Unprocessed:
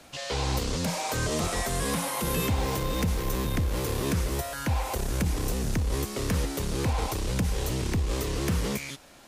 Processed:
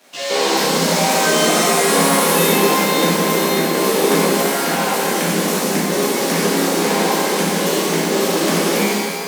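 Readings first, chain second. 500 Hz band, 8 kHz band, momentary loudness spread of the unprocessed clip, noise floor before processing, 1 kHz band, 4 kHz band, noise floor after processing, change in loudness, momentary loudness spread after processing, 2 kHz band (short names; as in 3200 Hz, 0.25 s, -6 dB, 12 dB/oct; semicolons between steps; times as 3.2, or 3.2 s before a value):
+16.5 dB, +15.0 dB, 3 LU, -40 dBFS, +16.0 dB, +15.5 dB, -22 dBFS, +13.0 dB, 4 LU, +16.0 dB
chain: crossover distortion -51 dBFS; elliptic high-pass 180 Hz, stop band 40 dB; shimmer reverb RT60 2 s, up +12 st, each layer -8 dB, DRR -8.5 dB; gain +7 dB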